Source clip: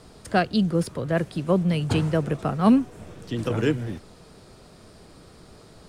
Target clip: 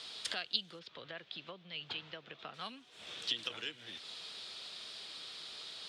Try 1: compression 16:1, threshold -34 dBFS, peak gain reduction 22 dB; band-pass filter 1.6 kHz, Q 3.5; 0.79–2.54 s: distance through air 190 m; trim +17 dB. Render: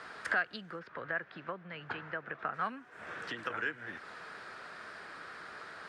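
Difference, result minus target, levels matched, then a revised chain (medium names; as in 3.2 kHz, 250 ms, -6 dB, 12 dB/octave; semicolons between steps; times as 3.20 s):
4 kHz band -15.0 dB
compression 16:1, threshold -34 dBFS, peak gain reduction 22 dB; band-pass filter 3.5 kHz, Q 3.5; 0.79–2.54 s: distance through air 190 m; trim +17 dB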